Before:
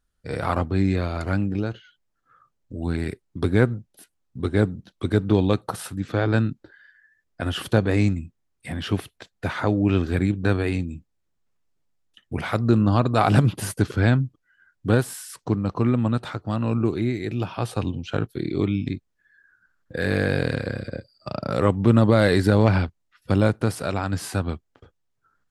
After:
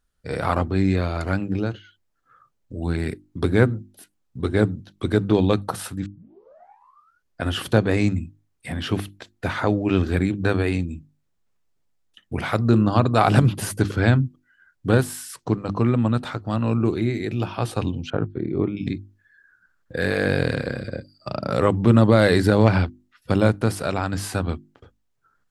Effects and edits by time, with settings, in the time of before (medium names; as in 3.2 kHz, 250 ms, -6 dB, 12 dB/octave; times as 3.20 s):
6.06 s: tape start 1.35 s
18.10–18.77 s: low-pass 1.3 kHz
whole clip: hum notches 50/100/150/200/250/300/350 Hz; trim +2 dB